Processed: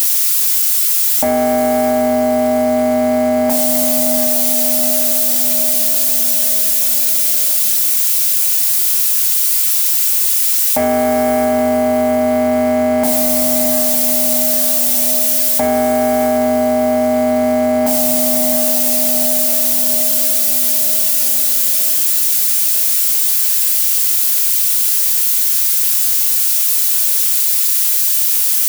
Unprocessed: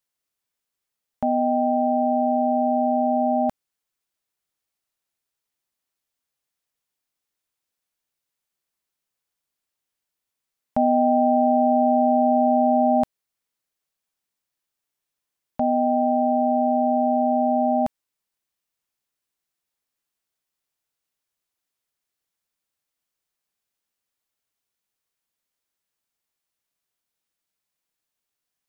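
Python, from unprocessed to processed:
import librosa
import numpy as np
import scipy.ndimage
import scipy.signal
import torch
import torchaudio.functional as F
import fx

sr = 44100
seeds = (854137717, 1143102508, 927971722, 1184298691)

p1 = x + 0.5 * 10.0 ** (-27.0 / 20.0) * np.diff(np.sign(x), prepend=np.sign(x[:1]))
p2 = fx.highpass(p1, sr, hz=330.0, slope=6)
p3 = fx.rider(p2, sr, range_db=10, speed_s=0.5)
p4 = p2 + (p3 * librosa.db_to_amplitude(-3.0))
p5 = 10.0 ** (-15.5 / 20.0) * np.tanh(p4 / 10.0 ** (-15.5 / 20.0))
p6 = fx.echo_diffused(p5, sr, ms=771, feedback_pct=57, wet_db=-10.5)
p7 = fx.rev_fdn(p6, sr, rt60_s=0.43, lf_ratio=1.0, hf_ratio=0.8, size_ms=20.0, drr_db=2.5)
p8 = fx.env_flatten(p7, sr, amount_pct=100)
y = p8 * librosa.db_to_amplitude(3.5)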